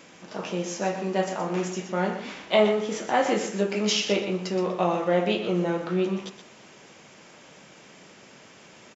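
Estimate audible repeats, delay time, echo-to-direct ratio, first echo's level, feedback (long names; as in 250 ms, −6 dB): 2, 122 ms, −9.5 dB, −9.5 dB, 19%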